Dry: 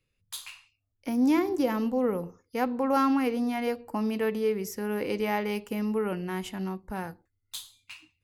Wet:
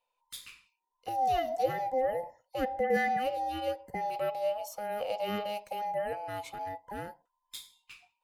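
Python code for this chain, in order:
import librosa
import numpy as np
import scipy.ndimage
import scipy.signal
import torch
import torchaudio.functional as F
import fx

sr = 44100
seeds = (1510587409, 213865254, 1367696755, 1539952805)

y = fx.band_invert(x, sr, width_hz=1000)
y = fx.small_body(y, sr, hz=(490.0, 3600.0), ring_ms=30, db=7)
y = F.gain(torch.from_numpy(y), -6.0).numpy()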